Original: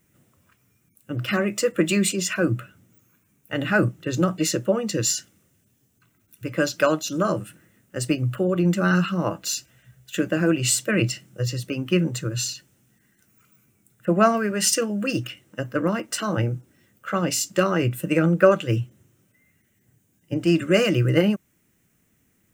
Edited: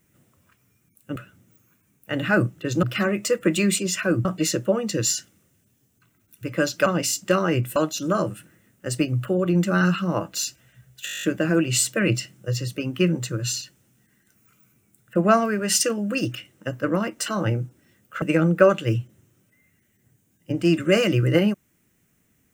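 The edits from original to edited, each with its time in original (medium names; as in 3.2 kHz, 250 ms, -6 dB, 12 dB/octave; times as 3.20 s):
1.16–2.58 s: move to 4.25 s
10.15 s: stutter 0.02 s, 10 plays
17.14–18.04 s: move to 6.86 s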